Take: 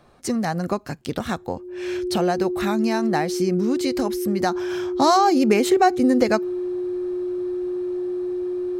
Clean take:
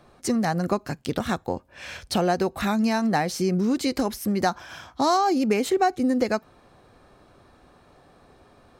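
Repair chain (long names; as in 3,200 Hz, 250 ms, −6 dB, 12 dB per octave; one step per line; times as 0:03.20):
notch filter 360 Hz, Q 30
level 0 dB, from 0:04.55 −4.5 dB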